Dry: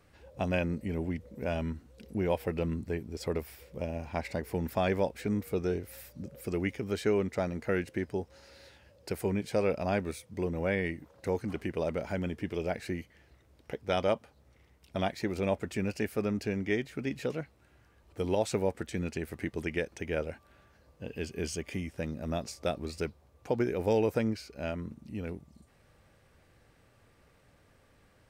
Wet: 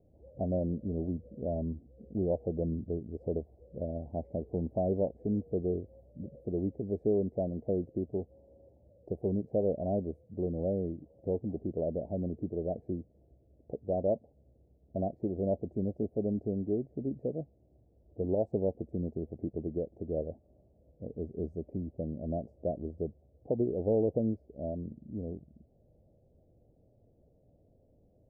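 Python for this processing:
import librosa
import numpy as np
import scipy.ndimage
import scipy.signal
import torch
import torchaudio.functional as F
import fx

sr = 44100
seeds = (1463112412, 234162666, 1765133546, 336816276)

y = scipy.signal.sosfilt(scipy.signal.ellip(4, 1.0, 50, 670.0, 'lowpass', fs=sr, output='sos'), x)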